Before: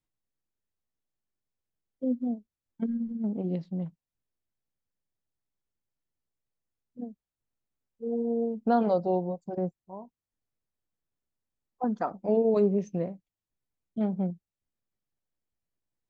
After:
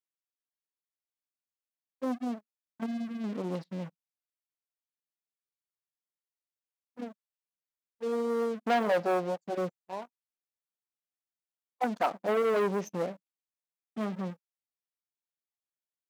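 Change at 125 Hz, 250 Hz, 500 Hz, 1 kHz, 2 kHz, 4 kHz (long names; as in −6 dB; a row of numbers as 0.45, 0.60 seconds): −6.5 dB, −5.5 dB, −1.5 dB, +1.5 dB, +12.5 dB, can't be measured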